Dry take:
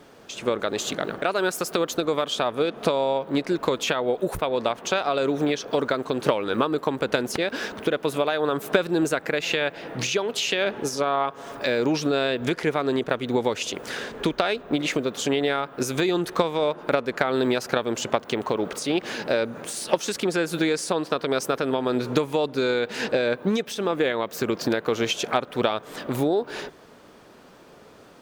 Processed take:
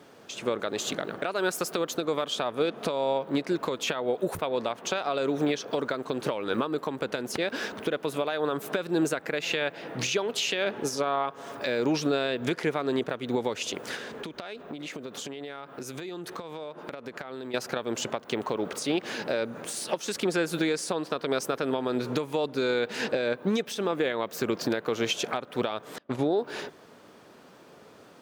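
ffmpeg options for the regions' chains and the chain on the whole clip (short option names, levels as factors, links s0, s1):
-filter_complex "[0:a]asettb=1/sr,asplit=3[s0][s1][s2];[s0]atrim=end=13.954[s3];[s1]atrim=start=13.95:end=17.54,asetpts=PTS-STARTPTS,afade=t=in:d=0.004:c=qsin,afade=t=out:st=3.586:d=0.004:c=qsin,highpass=44,acompressor=threshold=0.0282:ratio=12:attack=3.2:release=140:knee=1:detection=peak[s4];[s2]atrim=start=17.536[s5];[s3][s4]acrossfade=d=0.004:c1=hsin:c2=qsin[s6];[s6][s5]acrossfade=d=0.004:c1=qsin:c2=hsin,asettb=1/sr,asplit=3[s7][s8][s9];[s7]atrim=end=25.984[s10];[s8]atrim=start=25.98:end=26.39,asetpts=PTS-STARTPTS,afade=t=in:d=0.004:c=qsin,afade=t=out:st=0.406:d=0.004:c=qsin,agate=range=0.0398:threshold=0.0398:ratio=16:release=100:detection=peak,lowpass=5800[s11];[s9]atrim=start=26.386[s12];[s10][s11]acrossfade=d=0.004:c1=hsin:c2=qsin[s13];[s13][s12]acrossfade=d=0.004:c1=qsin:c2=hsin,alimiter=limit=0.224:level=0:latency=1:release=228,highpass=91,volume=0.75"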